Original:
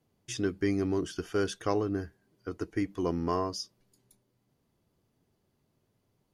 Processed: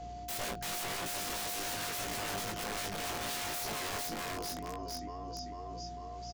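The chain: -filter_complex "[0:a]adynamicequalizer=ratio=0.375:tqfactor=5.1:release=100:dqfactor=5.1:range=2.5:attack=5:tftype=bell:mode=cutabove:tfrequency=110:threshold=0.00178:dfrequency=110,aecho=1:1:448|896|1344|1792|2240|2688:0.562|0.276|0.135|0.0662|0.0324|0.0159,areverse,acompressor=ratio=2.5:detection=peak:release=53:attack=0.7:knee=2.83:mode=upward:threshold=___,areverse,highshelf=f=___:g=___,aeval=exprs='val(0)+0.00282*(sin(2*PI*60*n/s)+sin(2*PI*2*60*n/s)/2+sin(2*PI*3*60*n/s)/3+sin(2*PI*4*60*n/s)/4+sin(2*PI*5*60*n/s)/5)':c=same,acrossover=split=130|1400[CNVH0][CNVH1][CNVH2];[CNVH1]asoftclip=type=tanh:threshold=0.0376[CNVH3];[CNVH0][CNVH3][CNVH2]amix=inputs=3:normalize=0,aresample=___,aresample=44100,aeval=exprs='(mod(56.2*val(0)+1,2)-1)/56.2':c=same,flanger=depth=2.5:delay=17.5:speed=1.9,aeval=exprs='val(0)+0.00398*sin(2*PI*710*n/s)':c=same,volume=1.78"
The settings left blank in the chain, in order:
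0.01, 2700, 8.5, 16000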